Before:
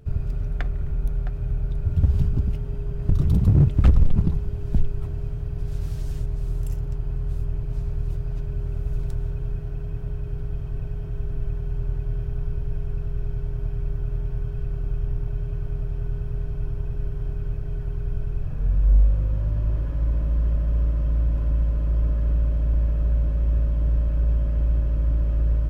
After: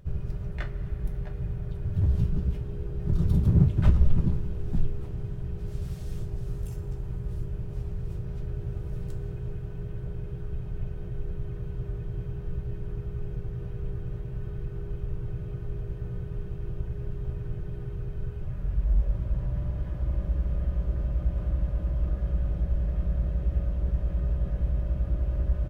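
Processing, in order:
pitch-shifted copies added −3 semitones −4 dB, +3 semitones −5 dB
coupled-rooms reverb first 0.23 s, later 5 s, from −21 dB, DRR 2.5 dB
level −7.5 dB

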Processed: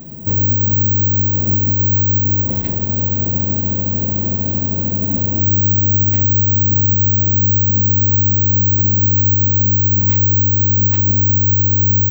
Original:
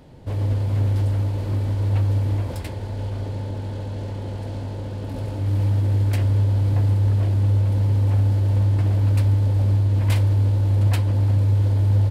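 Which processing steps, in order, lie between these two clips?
parametric band 200 Hz +15 dB 1.3 octaves
downward compressor, threshold −17 dBFS, peak gain reduction 8.5 dB
bad sample-rate conversion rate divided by 2×, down none, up zero stuff
level +2 dB

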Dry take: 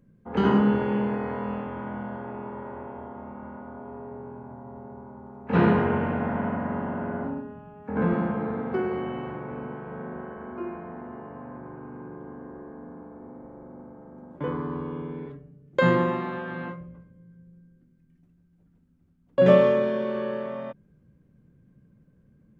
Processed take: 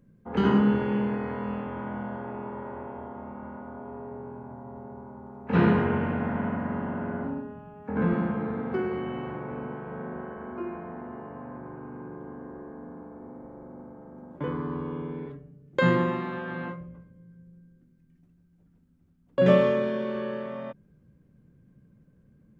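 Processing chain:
dynamic equaliser 690 Hz, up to −4 dB, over −35 dBFS, Q 0.89

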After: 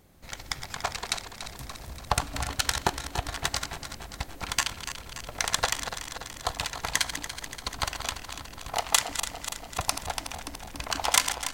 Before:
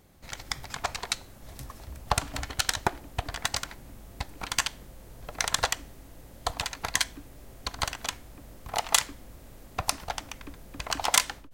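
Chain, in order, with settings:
feedback delay that plays each chunk backwards 144 ms, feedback 79%, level −9.5 dB

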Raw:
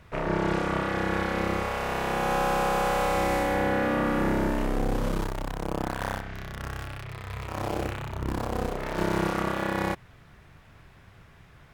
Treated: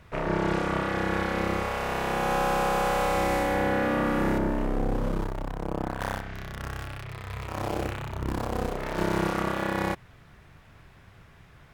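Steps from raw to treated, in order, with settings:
0:04.38–0:06.00: high-shelf EQ 2,100 Hz −9.5 dB

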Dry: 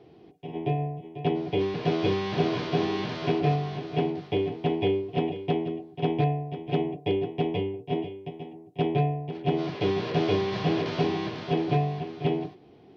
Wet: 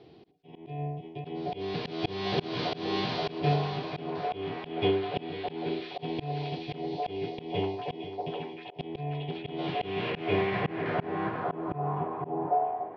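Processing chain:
echo through a band-pass that steps 794 ms, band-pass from 680 Hz, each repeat 0.7 octaves, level −1 dB
low-pass filter sweep 4,400 Hz → 720 Hz, 0:09.04–0:12.85
volume swells 236 ms
level −1 dB

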